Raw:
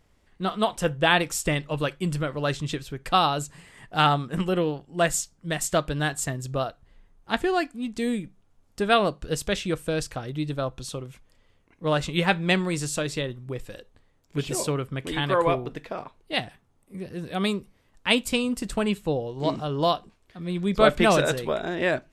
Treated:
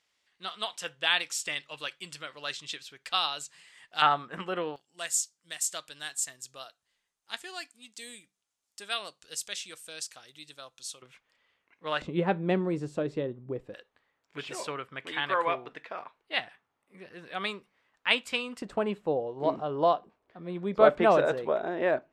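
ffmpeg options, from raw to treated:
-af "asetnsamples=n=441:p=0,asendcmd='4.02 bandpass f 1400;4.76 bandpass f 7100;11.02 bandpass f 2100;12.02 bandpass f 390;13.74 bandpass f 1700;18.62 bandpass f 680',bandpass=f=4.1k:t=q:w=0.84:csg=0"

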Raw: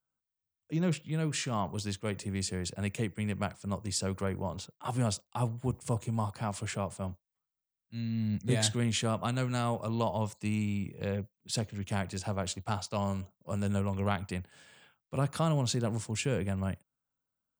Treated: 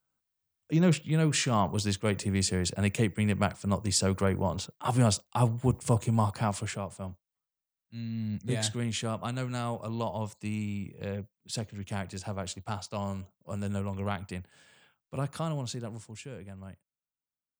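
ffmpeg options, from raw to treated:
-af "volume=6dB,afade=t=out:st=6.41:d=0.4:silence=0.398107,afade=t=out:st=15.15:d=1.1:silence=0.316228"

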